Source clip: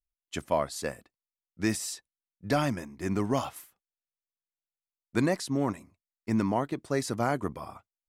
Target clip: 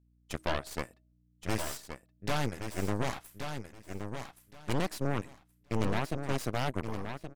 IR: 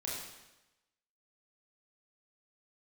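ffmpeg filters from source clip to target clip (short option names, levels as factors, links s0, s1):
-af "bandreject=f=314.4:t=h:w=4,bandreject=f=628.8:t=h:w=4,atempo=1.1,aeval=exprs='val(0)+0.00126*(sin(2*PI*60*n/s)+sin(2*PI*2*60*n/s)/2+sin(2*PI*3*60*n/s)/3+sin(2*PI*4*60*n/s)/4+sin(2*PI*5*60*n/s)/5)':c=same,aeval=exprs='0.237*(cos(1*acos(clip(val(0)/0.237,-1,1)))-cos(1*PI/2))+0.075*(cos(8*acos(clip(val(0)/0.237,-1,1)))-cos(8*PI/2))':c=same,aecho=1:1:1123|2246|3369:0.422|0.0801|0.0152,volume=0.398"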